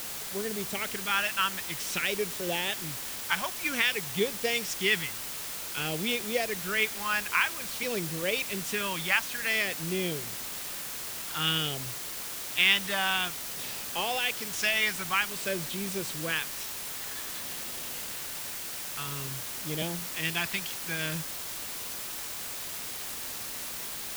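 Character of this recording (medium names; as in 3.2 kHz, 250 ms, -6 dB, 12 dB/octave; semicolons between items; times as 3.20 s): phasing stages 2, 0.52 Hz, lowest notch 440–1300 Hz; a quantiser's noise floor 6-bit, dither triangular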